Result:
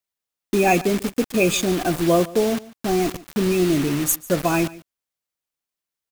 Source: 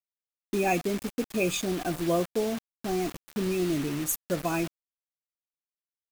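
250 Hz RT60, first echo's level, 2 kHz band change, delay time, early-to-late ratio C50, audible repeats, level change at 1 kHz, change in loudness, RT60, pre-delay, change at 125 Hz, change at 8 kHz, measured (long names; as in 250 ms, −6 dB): no reverb audible, −20.0 dB, +8.5 dB, 145 ms, no reverb audible, 1, +8.5 dB, +8.5 dB, no reverb audible, no reverb audible, +8.5 dB, +8.5 dB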